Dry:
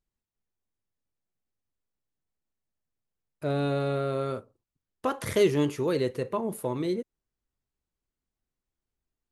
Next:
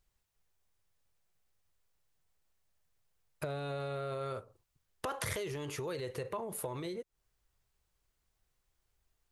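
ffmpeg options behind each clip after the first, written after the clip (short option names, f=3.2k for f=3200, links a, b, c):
-af "alimiter=level_in=0.5dB:limit=-24dB:level=0:latency=1:release=33,volume=-0.5dB,acompressor=threshold=-41dB:ratio=10,equalizer=f=250:t=o:w=1.1:g=-12,volume=9.5dB"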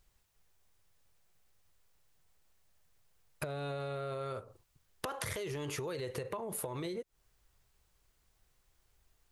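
-af "acompressor=threshold=-43dB:ratio=6,volume=7dB"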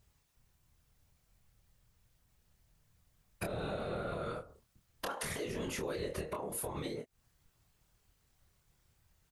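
-filter_complex "[0:a]afftfilt=real='hypot(re,im)*cos(2*PI*random(0))':imag='hypot(re,im)*sin(2*PI*random(1))':win_size=512:overlap=0.75,asplit=2[a][b];[b]adelay=26,volume=-5dB[c];[a][c]amix=inputs=2:normalize=0,volume=5dB"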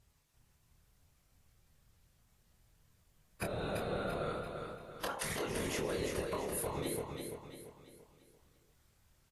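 -filter_complex "[0:a]asplit=2[a][b];[b]aecho=0:1:340|680|1020|1360|1700:0.562|0.236|0.0992|0.0417|0.0175[c];[a][c]amix=inputs=2:normalize=0" -ar 32000 -c:a aac -b:a 48k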